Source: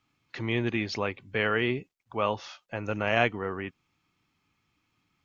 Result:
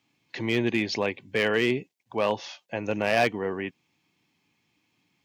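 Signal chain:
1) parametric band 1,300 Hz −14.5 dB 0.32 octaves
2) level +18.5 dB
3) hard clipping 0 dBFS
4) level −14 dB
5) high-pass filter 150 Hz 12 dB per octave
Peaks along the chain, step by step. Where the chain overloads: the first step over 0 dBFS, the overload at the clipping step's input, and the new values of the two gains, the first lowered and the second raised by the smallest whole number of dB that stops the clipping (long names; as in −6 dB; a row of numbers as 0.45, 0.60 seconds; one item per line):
−10.0, +8.5, 0.0, −14.0, −11.0 dBFS
step 2, 8.5 dB
step 2 +9.5 dB, step 4 −5 dB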